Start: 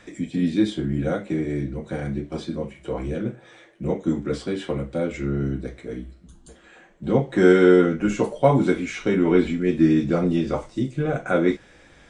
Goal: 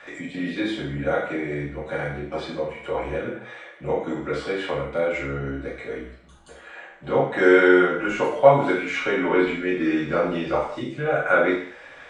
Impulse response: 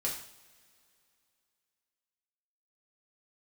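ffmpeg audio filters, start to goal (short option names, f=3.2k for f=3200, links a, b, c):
-filter_complex "[1:a]atrim=start_sample=2205,afade=t=out:st=0.28:d=0.01,atrim=end_sample=12789[a];[0:a][a]afir=irnorm=-1:irlink=0,asplit=2[b][c];[c]acompressor=threshold=-27dB:ratio=6,volume=-2.5dB[d];[b][d]amix=inputs=2:normalize=0,acrossover=split=530 3200:gain=0.126 1 0.178[e][f][g];[e][f][g]amix=inputs=3:normalize=0,volume=3dB"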